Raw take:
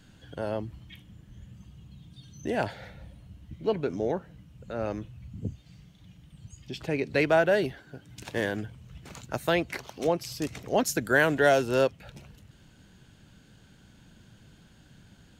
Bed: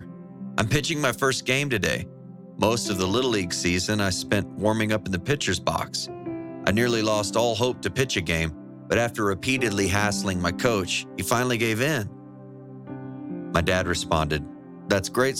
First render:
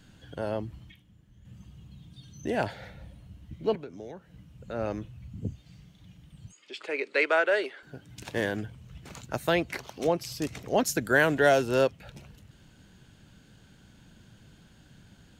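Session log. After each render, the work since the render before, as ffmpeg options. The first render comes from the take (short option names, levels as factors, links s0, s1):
-filter_complex "[0:a]asettb=1/sr,asplit=3[s0][s1][s2];[s0]atrim=end=3.754[s3];[s1]atrim=start=3.75:end=4.34,asetpts=PTS-STARTPTS,afade=t=in:d=0.004:c=qsin,afade=t=out:st=0.586:d=0.004:c=qsin,acrossover=split=220|1700[s4][s5][s6];[s4]acompressor=threshold=0.00282:ratio=4[s7];[s5]acompressor=threshold=0.00708:ratio=4[s8];[s6]acompressor=threshold=0.00112:ratio=4[s9];[s7][s8][s9]amix=inputs=3:normalize=0[s10];[s2]atrim=start=4.336[s11];[s3][s10]acrossfade=d=0.004:c1=hsin:c2=qsin[s12];[s12][s11]acrossfade=d=0.004:c1=qsin:c2=hsin,asettb=1/sr,asplit=3[s13][s14][s15];[s13]atrim=end=6.524[s16];[s14]atrim=start=6.52:end=7.83,asetpts=PTS-STARTPTS,afade=t=in:d=0.004:c=qsin,afade=t=out:st=1.306:d=0.004:c=qsin,highpass=f=390:w=0.5412,highpass=f=390:w=1.3066,equalizer=f=730:t=q:w=4:g=-8,equalizer=f=1300:t=q:w=4:g=6,equalizer=f=2200:t=q:w=4:g=5,equalizer=f=5800:t=q:w=4:g=-7,lowpass=f=9000:w=0.5412,lowpass=f=9000:w=1.3066[s17];[s15]atrim=start=7.826[s18];[s16][s17]acrossfade=d=0.004:c1=hsin:c2=qsin[s19];[s19][s18]acrossfade=d=0.004:c1=qsin:c2=hsin,asplit=3[s20][s21][s22];[s20]atrim=end=0.92,asetpts=PTS-STARTPTS,afade=t=out:st=0.77:d=0.15:c=log:silence=0.375837[s23];[s21]atrim=start=0.92:end=1.45,asetpts=PTS-STARTPTS,volume=0.376[s24];[s22]atrim=start=1.45,asetpts=PTS-STARTPTS,afade=t=in:d=0.15:c=log:silence=0.375837[s25];[s23][s24][s25]concat=n=3:v=0:a=1"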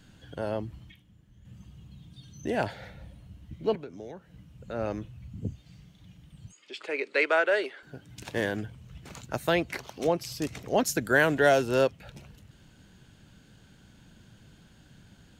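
-af anull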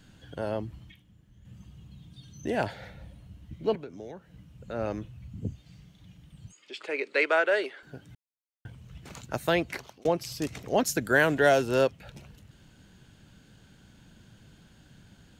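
-filter_complex "[0:a]asplit=4[s0][s1][s2][s3];[s0]atrim=end=8.15,asetpts=PTS-STARTPTS,afade=t=out:st=8.146:d=0.004:c=hsin[s4];[s1]atrim=start=8.15:end=8.65,asetpts=PTS-STARTPTS,volume=0[s5];[s2]atrim=start=8.65:end=10.05,asetpts=PTS-STARTPTS,afade=t=in:d=0.004:c=hsin,afade=t=out:st=0.98:d=0.42:c=qsin[s6];[s3]atrim=start=10.05,asetpts=PTS-STARTPTS,afade=t=in:d=0.004:c=hsin[s7];[s4][s5][s6][s7]concat=n=4:v=0:a=1"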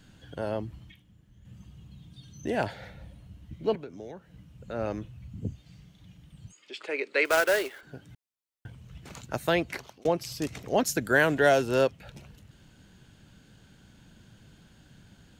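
-filter_complex "[0:a]asettb=1/sr,asplit=3[s0][s1][s2];[s0]atrim=end=7.254[s3];[s1]atrim=start=7.25:end=7.81,asetpts=PTS-STARTPTS,afade=t=in:d=0.004:c=qsin,afade=t=out:st=0.556:d=0.004:c=qsin,acrusher=bits=2:mode=log:mix=0:aa=0.000001[s4];[s2]atrim=start=7.806[s5];[s3][s4]acrossfade=d=0.004:c1=hsin:c2=qsin[s6];[s6][s5]acrossfade=d=0.004:c1=qsin:c2=hsin"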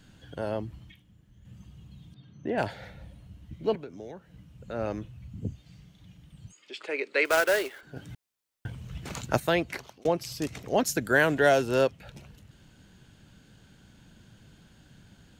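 -filter_complex "[0:a]asettb=1/sr,asplit=3[s0][s1][s2];[s0]atrim=end=2.144[s3];[s1]atrim=start=2.14:end=2.58,asetpts=PTS-STARTPTS,afade=t=in:d=0.004:c=qsin,afade=t=out:st=0.436:d=0.004:c=qsin,highpass=120,lowpass=2100[s4];[s2]atrim=start=2.576[s5];[s3][s4]acrossfade=d=0.004:c1=hsin:c2=qsin[s6];[s6][s5]acrossfade=d=0.004:c1=qsin:c2=hsin,asettb=1/sr,asplit=3[s7][s8][s9];[s7]atrim=end=7.964[s10];[s8]atrim=start=7.96:end=9.4,asetpts=PTS-STARTPTS,afade=t=in:d=0.004:c=qsin,afade=t=out:st=1.436:d=0.004:c=qsin,acontrast=83[s11];[s9]atrim=start=9.396[s12];[s10][s11]acrossfade=d=0.004:c1=hsin:c2=qsin[s13];[s13][s12]acrossfade=d=0.004:c1=qsin:c2=hsin"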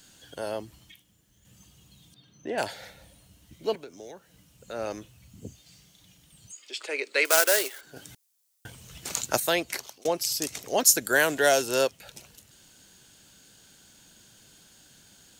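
-af "bass=f=250:g=-11,treble=f=4000:g=15"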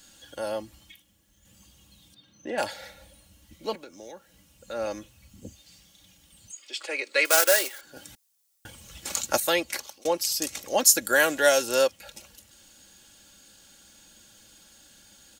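-af "equalizer=f=270:w=3.5:g=-5,aecho=1:1:3.6:0.61"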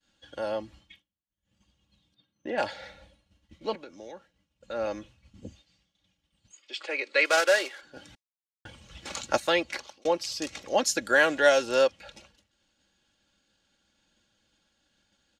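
-af "lowpass=4100,agate=range=0.0224:threshold=0.00355:ratio=3:detection=peak"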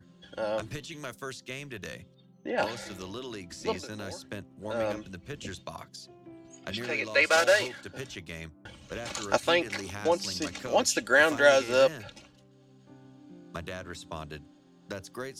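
-filter_complex "[1:a]volume=0.15[s0];[0:a][s0]amix=inputs=2:normalize=0"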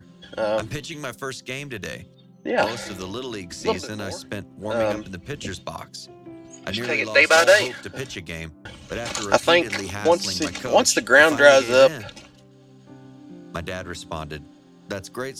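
-af "volume=2.51,alimiter=limit=0.891:level=0:latency=1"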